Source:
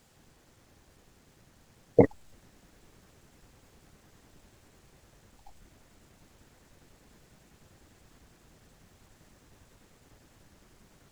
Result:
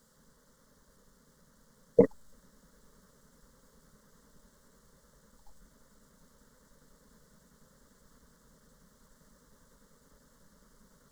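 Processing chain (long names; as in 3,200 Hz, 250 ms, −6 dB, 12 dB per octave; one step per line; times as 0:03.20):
phaser with its sweep stopped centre 500 Hz, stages 8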